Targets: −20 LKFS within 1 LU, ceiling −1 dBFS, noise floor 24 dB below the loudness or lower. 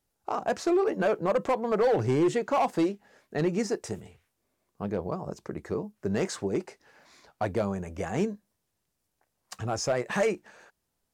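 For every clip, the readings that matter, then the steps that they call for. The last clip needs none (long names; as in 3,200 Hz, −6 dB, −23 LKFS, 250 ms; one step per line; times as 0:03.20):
share of clipped samples 1.1%; peaks flattened at −19.0 dBFS; integrated loudness −29.0 LKFS; sample peak −19.0 dBFS; target loudness −20.0 LKFS
→ clipped peaks rebuilt −19 dBFS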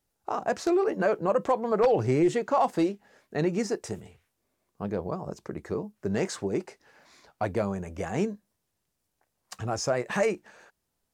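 share of clipped samples 0.0%; integrated loudness −28.5 LKFS; sample peak −10.0 dBFS; target loudness −20.0 LKFS
→ level +8.5 dB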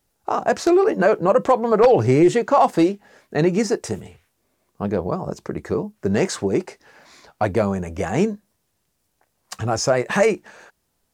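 integrated loudness −20.0 LKFS; sample peak −1.5 dBFS; background noise floor −71 dBFS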